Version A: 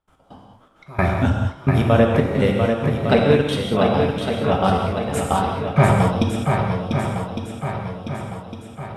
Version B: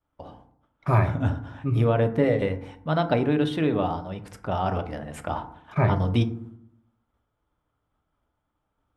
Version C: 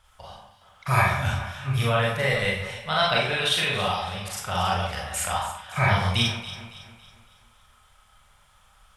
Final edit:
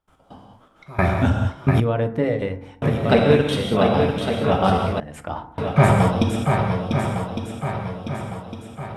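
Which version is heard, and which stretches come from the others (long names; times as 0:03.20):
A
0:01.80–0:02.82: punch in from B
0:05.00–0:05.58: punch in from B
not used: C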